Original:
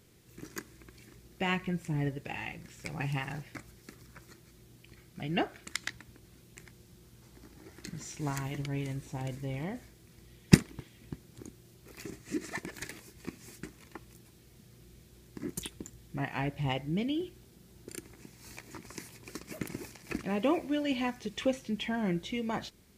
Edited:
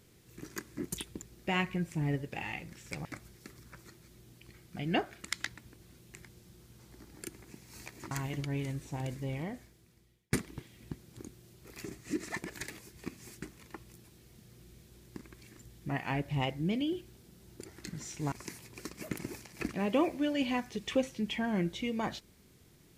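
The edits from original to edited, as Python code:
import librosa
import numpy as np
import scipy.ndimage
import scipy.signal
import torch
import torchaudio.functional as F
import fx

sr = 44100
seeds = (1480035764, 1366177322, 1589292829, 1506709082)

y = fx.edit(x, sr, fx.swap(start_s=0.77, length_s=0.38, other_s=15.42, other_length_s=0.45),
    fx.cut(start_s=2.98, length_s=0.5),
    fx.swap(start_s=7.65, length_s=0.67, other_s=17.93, other_length_s=0.89),
    fx.fade_out_span(start_s=9.52, length_s=1.02), tone=tone)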